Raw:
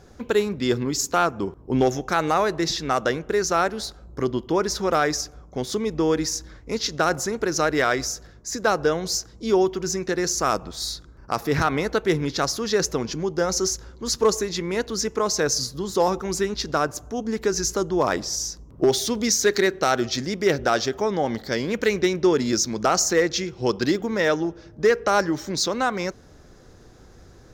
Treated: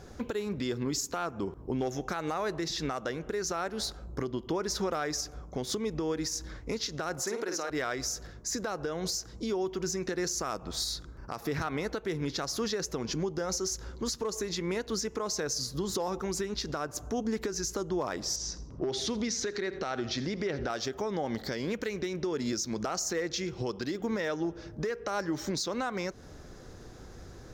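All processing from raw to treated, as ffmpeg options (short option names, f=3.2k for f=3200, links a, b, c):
-filter_complex "[0:a]asettb=1/sr,asplit=3[a][b][c];[a]atrim=end=7.224[d];[b]atrim=start=7.22:end=7.7,asetpts=PTS-STARTPTS,afade=t=in:d=0.004:c=qsin,afade=t=out:st=0.476:d=0.004:c=qsin,highpass=300,asplit=2[e][f];[f]adelay=50,volume=-6dB[g];[e][g]amix=inputs=2:normalize=0,atrim=end_sample=21168[h];[c]atrim=start=7.696[i];[d][h]acrossfade=d=0.004:c1=hsin:c2=qsin[j];[j][i]acrossfade=d=0.004:c1=qsin:c2=hsin,asettb=1/sr,asplit=3[k][l][m];[k]atrim=end=18.364[n];[l]atrim=start=18.36:end=20.7,asetpts=PTS-STARTPTS,afade=t=in:d=0.004:c=qsin,afade=t=out:st=2.336:d=0.004:c=qsin,lowpass=4.6k,acompressor=threshold=-31dB:ratio=2:attack=3.2:release=140:knee=1:detection=peak,aecho=1:1:83|166|249:0.126|0.039|0.0121,atrim=end_sample=103194[o];[m]atrim=start=20.696[p];[n][o]acrossfade=d=0.004:c1=hsin:c2=qsin[q];[q][p]acrossfade=d=0.004:c1=qsin:c2=hsin,acompressor=threshold=-28dB:ratio=6,alimiter=limit=-23.5dB:level=0:latency=1:release=168,volume=1dB"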